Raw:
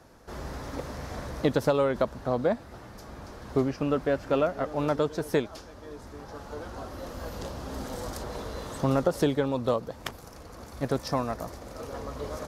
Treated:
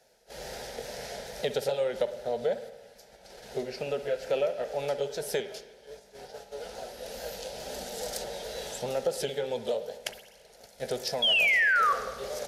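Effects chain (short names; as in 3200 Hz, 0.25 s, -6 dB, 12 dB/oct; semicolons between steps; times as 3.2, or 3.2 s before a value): repeated pitch sweeps -1.5 st, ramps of 0.422 s; gate -43 dBFS, range -9 dB; HPF 130 Hz 6 dB/oct; bell 170 Hz -14.5 dB 2.2 oct; in parallel at +3 dB: compressor, threshold -35 dBFS, peak gain reduction 10.5 dB; on the sum: fixed phaser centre 300 Hz, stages 6; painted sound fall, 11.22–11.93, 1100–3400 Hz -23 dBFS; soft clip -13 dBFS, distortion -31 dB; spring tank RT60 1.1 s, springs 51/56 ms, chirp 20 ms, DRR 10.5 dB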